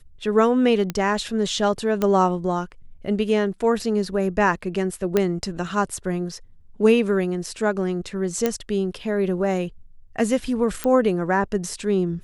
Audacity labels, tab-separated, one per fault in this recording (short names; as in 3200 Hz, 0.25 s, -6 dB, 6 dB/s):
0.900000	0.900000	pop -12 dBFS
2.020000	2.020000	pop -10 dBFS
5.170000	5.170000	pop -7 dBFS
8.460000	8.460000	pop -7 dBFS
10.840000	10.840000	pop -9 dBFS